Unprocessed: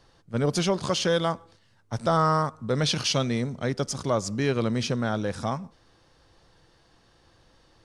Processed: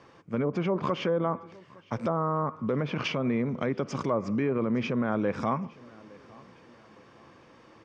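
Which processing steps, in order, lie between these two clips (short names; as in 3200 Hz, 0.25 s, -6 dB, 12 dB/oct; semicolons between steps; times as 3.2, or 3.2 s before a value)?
treble ducked by the level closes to 930 Hz, closed at -19 dBFS; tilt -2.5 dB/oct; in parallel at -1 dB: compressor, threshold -31 dBFS, peak gain reduction 15 dB; on the sum: limiter -16 dBFS, peak gain reduction 8.5 dB; speaker cabinet 230–8400 Hz, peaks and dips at 740 Hz -3 dB, 1100 Hz +6 dB, 2300 Hz +9 dB, 4100 Hz -8 dB; on a send: feedback echo 0.861 s, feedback 41%, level -24 dB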